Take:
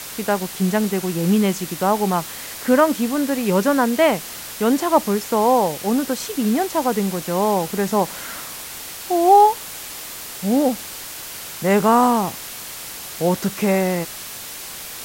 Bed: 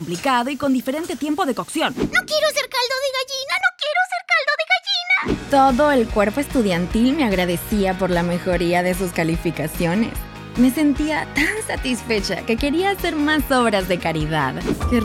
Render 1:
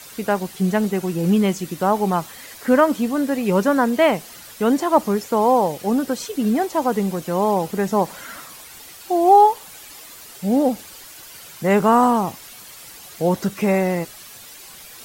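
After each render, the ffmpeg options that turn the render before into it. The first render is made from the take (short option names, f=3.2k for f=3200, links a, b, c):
-af "afftdn=nr=10:nf=-34"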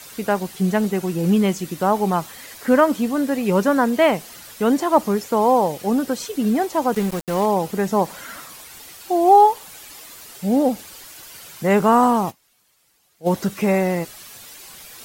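-filter_complex "[0:a]asettb=1/sr,asplit=3[a][b][c];[a]atrim=end=6.944[d];[b]atrim=start=6.94:end=7.46,asetpts=PTS-STARTPTS,afade=t=in:d=0.004:c=qsin,afade=t=out:st=0.516:d=0.004:c=qsin,aeval=exprs='val(0)*gte(abs(val(0)),0.0422)':c=same[e];[c]atrim=start=7.456[f];[d][e]acrossfade=d=0.004:c1=hsin:c2=qsin[g];[g][f]acrossfade=d=0.004:c1=qsin:c2=hsin,asplit=3[h][i][j];[h]atrim=end=12.44,asetpts=PTS-STARTPTS,afade=t=out:st=12.3:d=0.14:c=exp:silence=0.0794328[k];[i]atrim=start=12.44:end=13.13,asetpts=PTS-STARTPTS,volume=-22dB[l];[j]atrim=start=13.13,asetpts=PTS-STARTPTS,afade=t=in:d=0.14:c=exp:silence=0.0794328[m];[k][l][m]concat=n=3:v=0:a=1"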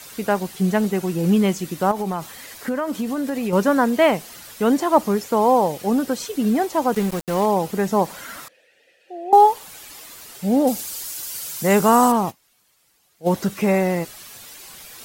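-filter_complex "[0:a]asettb=1/sr,asplit=3[a][b][c];[a]atrim=end=1.914[d];[b]atrim=start=1.91:end=3.53,asetpts=PTS-STARTPTS,afade=t=in:d=0.004:c=qsin,afade=t=out:st=1.616:d=0.004:c=qsin,acompressor=threshold=-20dB:ratio=6:attack=3.2:release=140:knee=1:detection=peak[e];[c]atrim=start=3.526[f];[d][e]acrossfade=d=0.004:c1=hsin:c2=qsin[g];[g][f]acrossfade=d=0.004:c1=qsin:c2=hsin,asettb=1/sr,asplit=3[h][i][j];[h]atrim=end=8.484[k];[i]atrim=start=8.48:end=9.33,asetpts=PTS-STARTPTS,afade=t=in:d=0.004:c=qsin,afade=t=out:st=0.846:d=0.004:c=qsin,asplit=3[l][m][n];[l]bandpass=f=530:t=q:w=8,volume=0dB[o];[m]bandpass=f=1.84k:t=q:w=8,volume=-6dB[p];[n]bandpass=f=2.48k:t=q:w=8,volume=-9dB[q];[o][p][q]amix=inputs=3:normalize=0[r];[j]atrim=start=9.326[s];[k][r]acrossfade=d=0.004:c1=hsin:c2=qsin[t];[t][s]acrossfade=d=0.004:c1=qsin:c2=hsin,asettb=1/sr,asplit=3[u][v][w];[u]atrim=end=10.674[x];[v]atrim=start=10.67:end=12.12,asetpts=PTS-STARTPTS,afade=t=in:d=0.004:c=qsin,afade=t=out:st=1.446:d=0.004:c=qsin,bass=f=250:g=0,treble=f=4k:g=11[y];[w]atrim=start=12.116[z];[x][y]acrossfade=d=0.004:c1=hsin:c2=qsin[aa];[aa][z]acrossfade=d=0.004:c1=qsin:c2=hsin"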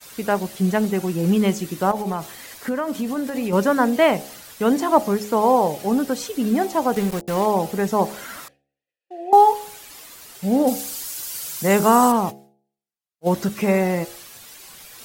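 -af "agate=range=-33dB:threshold=-38dB:ratio=3:detection=peak,bandreject=f=69.55:t=h:w=4,bandreject=f=139.1:t=h:w=4,bandreject=f=208.65:t=h:w=4,bandreject=f=278.2:t=h:w=4,bandreject=f=347.75:t=h:w=4,bandreject=f=417.3:t=h:w=4,bandreject=f=486.85:t=h:w=4,bandreject=f=556.4:t=h:w=4,bandreject=f=625.95:t=h:w=4,bandreject=f=695.5:t=h:w=4,bandreject=f=765.05:t=h:w=4,bandreject=f=834.6:t=h:w=4"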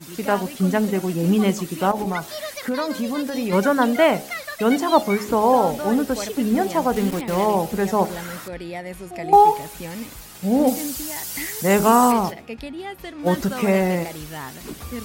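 -filter_complex "[1:a]volume=-14dB[a];[0:a][a]amix=inputs=2:normalize=0"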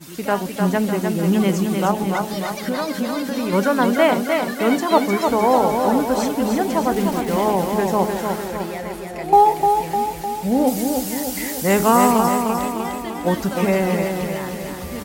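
-af "aecho=1:1:303|606|909|1212|1515|1818|2121|2424:0.562|0.326|0.189|0.11|0.0636|0.0369|0.0214|0.0124"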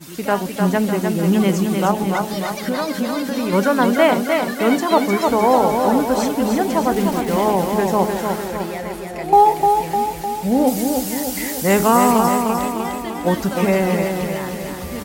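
-af "volume=1.5dB,alimiter=limit=-3dB:level=0:latency=1"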